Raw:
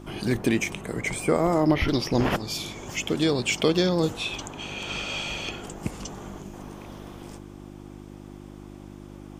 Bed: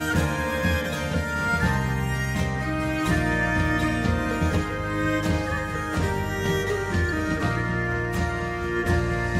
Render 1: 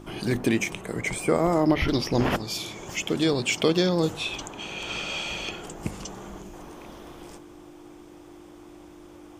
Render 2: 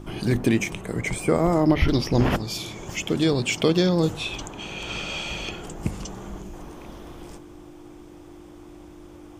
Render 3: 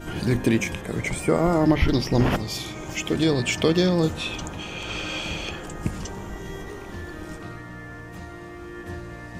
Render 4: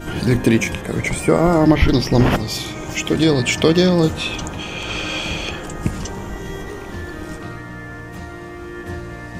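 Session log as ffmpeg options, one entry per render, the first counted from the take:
-af "bandreject=f=50:t=h:w=4,bandreject=f=100:t=h:w=4,bandreject=f=150:t=h:w=4,bandreject=f=200:t=h:w=4,bandreject=f=250:t=h:w=4"
-af "lowshelf=f=180:g=8.5"
-filter_complex "[1:a]volume=-13.5dB[a];[0:a][a]amix=inputs=2:normalize=0"
-af "volume=6dB"

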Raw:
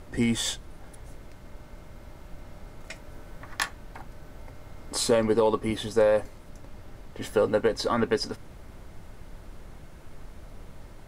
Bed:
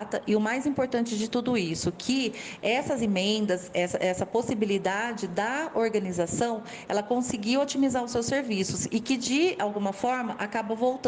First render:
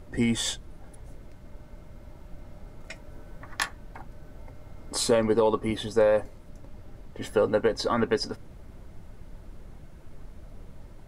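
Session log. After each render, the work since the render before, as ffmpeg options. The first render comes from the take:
-af "afftdn=nr=6:nf=-47"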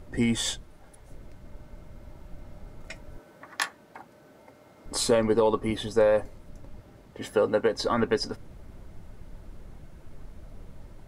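-filter_complex "[0:a]asettb=1/sr,asplit=3[a][b][c];[a]atrim=end=0.644[d];[b]atrim=start=0.64:end=1.11,asetpts=PTS-STARTPTS,afade=t=in:d=0.004:c=qsin,afade=t=out:st=0.466:d=0.004:c=qsin,lowshelf=f=370:g=-8[e];[c]atrim=start=1.106[f];[d][e]acrossfade=d=0.004:c1=hsin:c2=qsin[g];[g][f]acrossfade=d=0.004:c1=qsin:c2=hsin,asettb=1/sr,asplit=3[h][i][j];[h]atrim=end=3.184[k];[i]atrim=start=3.18:end=4.86,asetpts=PTS-STARTPTS,afade=t=in:d=0.004:c=qsin,afade=t=out:st=1.676:d=0.004:c=qsin,highpass=250[l];[j]atrim=start=4.856[m];[k][l]acrossfade=d=0.004:c1=hsin:c2=qsin[n];[n][m]acrossfade=d=0.004:c1=qsin:c2=hsin,asettb=1/sr,asplit=3[o][p][q];[o]atrim=end=6.804[r];[p]atrim=start=6.8:end=7.78,asetpts=PTS-STARTPTS,afade=t=in:d=0.004:c=qsin,afade=t=out:st=0.976:d=0.004:c=qsin,highpass=f=130:p=1[s];[q]atrim=start=7.776[t];[r][s]acrossfade=d=0.004:c1=hsin:c2=qsin[u];[u][t]acrossfade=d=0.004:c1=qsin:c2=hsin"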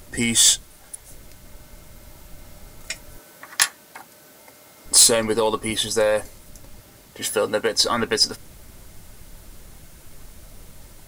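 -af "crystalizer=i=8.5:c=0,asoftclip=type=tanh:threshold=-3.5dB"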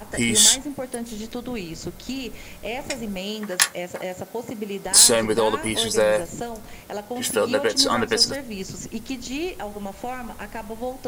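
-filter_complex "[1:a]volume=-4.5dB[a];[0:a][a]amix=inputs=2:normalize=0"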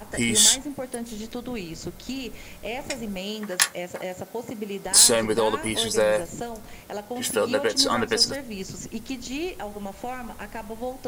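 -af "volume=-2dB"

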